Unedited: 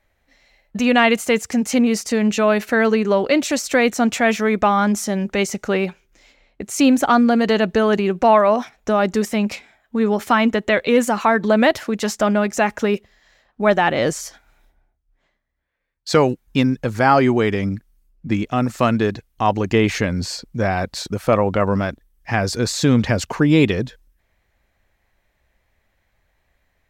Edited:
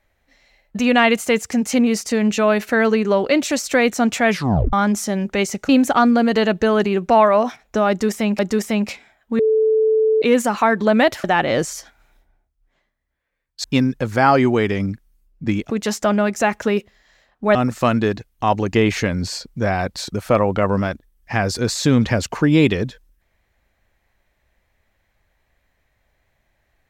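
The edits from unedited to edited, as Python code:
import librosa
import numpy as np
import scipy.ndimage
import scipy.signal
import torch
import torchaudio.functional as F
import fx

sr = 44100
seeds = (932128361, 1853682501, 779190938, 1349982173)

y = fx.edit(x, sr, fx.tape_stop(start_s=4.29, length_s=0.44),
    fx.cut(start_s=5.69, length_s=1.13),
    fx.repeat(start_s=9.02, length_s=0.5, count=2),
    fx.bleep(start_s=10.02, length_s=0.83, hz=438.0, db=-12.5),
    fx.move(start_s=11.87, length_s=1.85, to_s=18.53),
    fx.cut(start_s=16.12, length_s=0.35), tone=tone)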